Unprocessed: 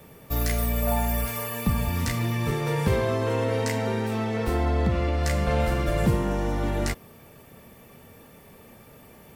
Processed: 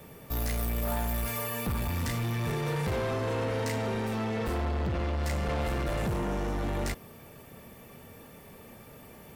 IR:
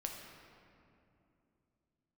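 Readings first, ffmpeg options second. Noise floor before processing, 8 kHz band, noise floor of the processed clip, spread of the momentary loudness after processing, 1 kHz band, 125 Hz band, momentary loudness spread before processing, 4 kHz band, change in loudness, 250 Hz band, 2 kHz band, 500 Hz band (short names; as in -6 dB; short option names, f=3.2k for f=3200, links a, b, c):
-50 dBFS, -5.0 dB, -50 dBFS, 19 LU, -5.0 dB, -5.5 dB, 4 LU, -4.5 dB, -5.5 dB, -6.0 dB, -4.5 dB, -6.0 dB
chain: -af "asoftclip=type=tanh:threshold=-27dB"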